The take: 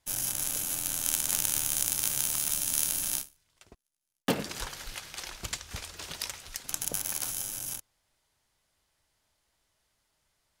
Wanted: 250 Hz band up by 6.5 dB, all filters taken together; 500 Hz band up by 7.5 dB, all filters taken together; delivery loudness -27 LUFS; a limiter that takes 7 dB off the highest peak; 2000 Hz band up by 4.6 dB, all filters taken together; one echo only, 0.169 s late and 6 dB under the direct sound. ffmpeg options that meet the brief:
-af "equalizer=f=250:t=o:g=6,equalizer=f=500:t=o:g=7,equalizer=f=2k:t=o:g=5.5,alimiter=limit=-8dB:level=0:latency=1,aecho=1:1:169:0.501,volume=2.5dB"

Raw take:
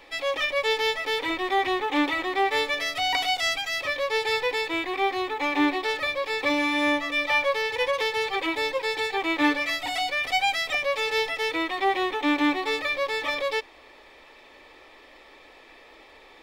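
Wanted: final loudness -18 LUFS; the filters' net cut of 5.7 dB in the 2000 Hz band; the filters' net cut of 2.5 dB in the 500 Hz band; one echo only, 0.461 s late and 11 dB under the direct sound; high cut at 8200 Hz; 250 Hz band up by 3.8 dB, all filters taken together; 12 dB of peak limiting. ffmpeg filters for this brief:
-af "lowpass=8.2k,equalizer=f=250:t=o:g=7,equalizer=f=500:t=o:g=-5,equalizer=f=2k:t=o:g=-6.5,alimiter=limit=-23dB:level=0:latency=1,aecho=1:1:461:0.282,volume=12.5dB"

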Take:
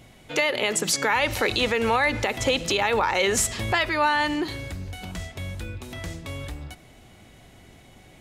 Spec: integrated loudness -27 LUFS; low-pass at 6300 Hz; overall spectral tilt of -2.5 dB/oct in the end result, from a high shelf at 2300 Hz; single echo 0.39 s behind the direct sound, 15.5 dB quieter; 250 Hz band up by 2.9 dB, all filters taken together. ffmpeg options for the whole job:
-af "lowpass=6.3k,equalizer=f=250:t=o:g=3.5,highshelf=f=2.3k:g=7,aecho=1:1:390:0.168,volume=-6.5dB"

